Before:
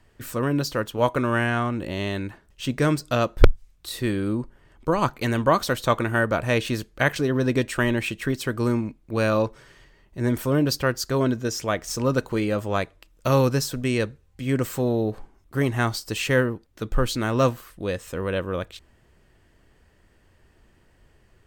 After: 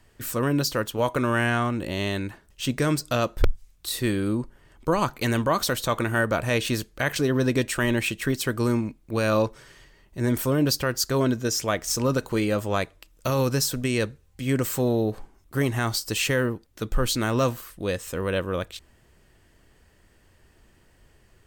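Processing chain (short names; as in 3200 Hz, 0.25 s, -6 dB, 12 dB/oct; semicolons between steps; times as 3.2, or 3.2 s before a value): high shelf 4500 Hz +7 dB; limiter -12.5 dBFS, peak gain reduction 9 dB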